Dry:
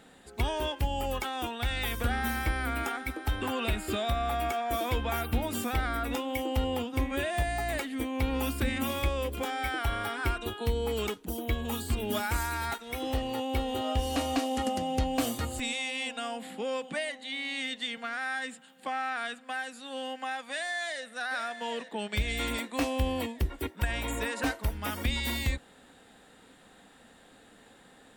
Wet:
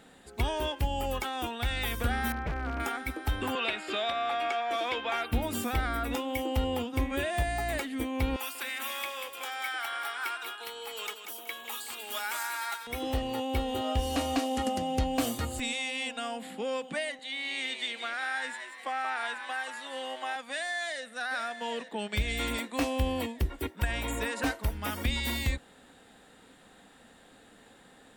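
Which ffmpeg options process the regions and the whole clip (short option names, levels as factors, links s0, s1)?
-filter_complex "[0:a]asettb=1/sr,asplit=3[s0][s1][s2];[s0]atrim=end=2.324[s3];[s1]atrim=start=2.32:end=2.8,asetpts=PTS-STARTPTS,afade=t=in:d=0.004:c=qsin,afade=t=out:st=0.476:d=0.004:c=qsin,lowpass=1300,equalizer=f=170:w=2.8:g=-7,aeval=exprs='0.0473*(abs(mod(val(0)/0.0473+3,4)-2)-1)':c=same[s4];[s2]atrim=start=2.796[s5];[s3][s4]acrossfade=d=0.004:c1=hsin:c2=qsin[s6];[s6][s5]acrossfade=d=0.004:c1=qsin:c2=hsin,asettb=1/sr,asplit=3[s7][s8][s9];[s7]atrim=end=3.554[s10];[s8]atrim=start=3.55:end=5.32,asetpts=PTS-STARTPTS,afade=t=in:d=0.004:c=qsin,afade=t=out:st=1.766:d=0.004:c=qsin,highpass=390,lowpass=5200,equalizer=f=2800:t=o:w=1.9:g=4.5[s11];[s9]atrim=start=5.316[s12];[s10][s11]acrossfade=d=0.004:c1=hsin:c2=qsin[s13];[s13][s12]acrossfade=d=0.004:c1=qsin:c2=hsin,asettb=1/sr,asplit=3[s14][s15][s16];[s14]atrim=end=8.364[s17];[s15]atrim=start=8.36:end=12.87,asetpts=PTS-STARTPTS,afade=t=in:d=0.004:c=qsin,afade=t=out:st=4.506:d=0.004:c=qsin,highpass=970,aecho=1:1:187|374|561|748:0.376|0.124|0.0409|0.0135,atrim=end_sample=198891[s18];[s16]atrim=start=12.866[s19];[s17][s18]acrossfade=d=0.004:c1=hsin:c2=qsin[s20];[s20][s19]acrossfade=d=0.004:c1=qsin:c2=hsin,asettb=1/sr,asplit=3[s21][s22][s23];[s21]atrim=end=17.194[s24];[s22]atrim=start=17.19:end=20.36,asetpts=PTS-STARTPTS,afade=t=in:d=0.004:c=qsin,afade=t=out:st=3.166:d=0.004:c=qsin,highpass=360,asplit=7[s25][s26][s27][s28][s29][s30][s31];[s26]adelay=180,afreqshift=110,volume=0.398[s32];[s27]adelay=360,afreqshift=220,volume=0.207[s33];[s28]adelay=540,afreqshift=330,volume=0.107[s34];[s29]adelay=720,afreqshift=440,volume=0.0562[s35];[s30]adelay=900,afreqshift=550,volume=0.0292[s36];[s31]adelay=1080,afreqshift=660,volume=0.0151[s37];[s25][s32][s33][s34][s35][s36][s37]amix=inputs=7:normalize=0,atrim=end_sample=139797[s38];[s23]atrim=start=20.356[s39];[s24][s38]acrossfade=d=0.004:c1=hsin:c2=qsin[s40];[s40][s39]acrossfade=d=0.004:c1=qsin:c2=hsin"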